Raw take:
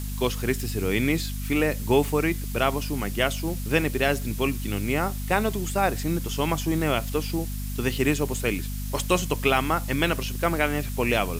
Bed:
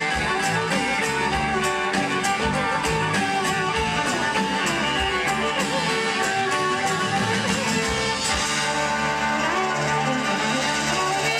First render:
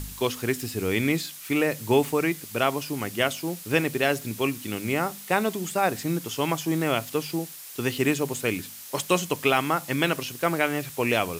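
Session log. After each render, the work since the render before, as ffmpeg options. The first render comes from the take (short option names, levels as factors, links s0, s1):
-af "bandreject=f=50:t=h:w=4,bandreject=f=100:t=h:w=4,bandreject=f=150:t=h:w=4,bandreject=f=200:t=h:w=4,bandreject=f=250:t=h:w=4"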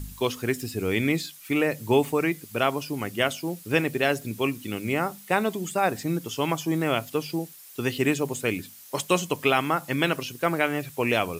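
-af "afftdn=nr=8:nf=-42"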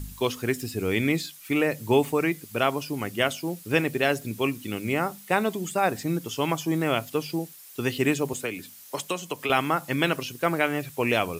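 -filter_complex "[0:a]asettb=1/sr,asplit=3[s0][s1][s2];[s0]atrim=end=8.334[s3];[s1]atrim=start=8.33:end=9.5,asetpts=PTS-STARTPTS,afade=t=in:d=0.004:c=qsin,afade=t=out:st=1.166:d=0.004:c=qsin,acrossover=split=180|450[s4][s5][s6];[s4]acompressor=threshold=0.00355:ratio=4[s7];[s5]acompressor=threshold=0.0158:ratio=4[s8];[s6]acompressor=threshold=0.0355:ratio=4[s9];[s7][s8][s9]amix=inputs=3:normalize=0[s10];[s2]atrim=start=9.496[s11];[s3][s10]acrossfade=d=0.004:c1=hsin:c2=qsin[s12];[s12][s11]acrossfade=d=0.004:c1=qsin:c2=hsin"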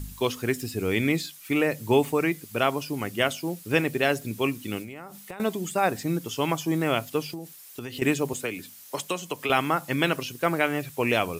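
-filter_complex "[0:a]asettb=1/sr,asplit=3[s0][s1][s2];[s0]atrim=end=4.824[s3];[s1]atrim=start=4.82:end=5.4,asetpts=PTS-STARTPTS,afade=t=in:d=0.004:c=qsin,afade=t=out:st=0.576:d=0.004:c=qsin,acompressor=threshold=0.0178:ratio=12:attack=3.2:release=140:knee=1:detection=peak[s4];[s2]atrim=start=5.396[s5];[s3][s4]acrossfade=d=0.004:c1=hsin:c2=qsin[s6];[s6][s5]acrossfade=d=0.004:c1=qsin:c2=hsin,asettb=1/sr,asplit=3[s7][s8][s9];[s7]atrim=end=7.294[s10];[s8]atrim=start=7.29:end=8.02,asetpts=PTS-STARTPTS,afade=t=in:d=0.004:c=qsin,afade=t=out:st=0.726:d=0.004:c=qsin,acompressor=threshold=0.0282:ratio=12:attack=3.2:release=140:knee=1:detection=peak[s11];[s9]atrim=start=8.016[s12];[s10][s11]acrossfade=d=0.004:c1=hsin:c2=qsin[s13];[s13][s12]acrossfade=d=0.004:c1=qsin:c2=hsin"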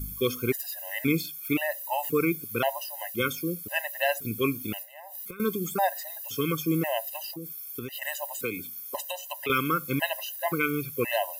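-af "aexciter=amount=5.9:drive=2.6:freq=11000,afftfilt=real='re*gt(sin(2*PI*0.95*pts/sr)*(1-2*mod(floor(b*sr/1024/520),2)),0)':imag='im*gt(sin(2*PI*0.95*pts/sr)*(1-2*mod(floor(b*sr/1024/520),2)),0)':win_size=1024:overlap=0.75"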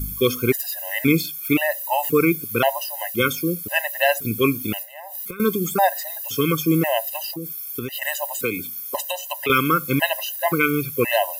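-af "volume=2.37"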